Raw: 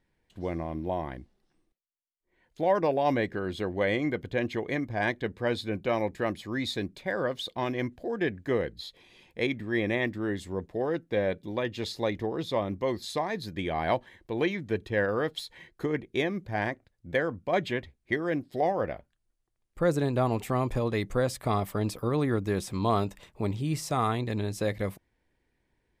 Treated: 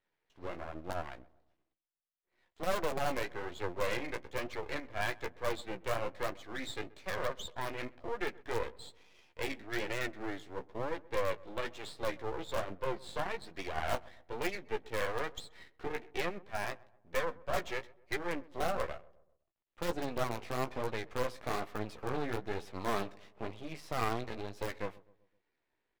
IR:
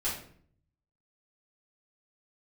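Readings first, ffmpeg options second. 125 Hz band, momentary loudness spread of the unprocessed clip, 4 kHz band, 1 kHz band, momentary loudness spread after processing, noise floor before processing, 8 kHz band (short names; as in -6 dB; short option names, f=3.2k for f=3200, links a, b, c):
-13.0 dB, 7 LU, -5.5 dB, -6.0 dB, 8 LU, -76 dBFS, -4.0 dB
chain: -filter_complex "[0:a]acrossover=split=330 4200:gain=0.158 1 0.0794[a][b][c];[a][b][c]amix=inputs=3:normalize=0,asplit=2[d][e];[e]aeval=exprs='(mod(11.2*val(0)+1,2)-1)/11.2':c=same,volume=-9dB[f];[d][f]amix=inputs=2:normalize=0,flanger=delay=9.7:depth=9.1:regen=17:speed=1.1:shape=triangular,aeval=exprs='max(val(0),0)':c=same,asplit=2[g][h];[h]adelay=128,lowpass=f=1.2k:p=1,volume=-21dB,asplit=2[i][j];[j]adelay=128,lowpass=f=1.2k:p=1,volume=0.49,asplit=2[k][l];[l]adelay=128,lowpass=f=1.2k:p=1,volume=0.49,asplit=2[m][n];[n]adelay=128,lowpass=f=1.2k:p=1,volume=0.49[o];[g][i][k][m][o]amix=inputs=5:normalize=0"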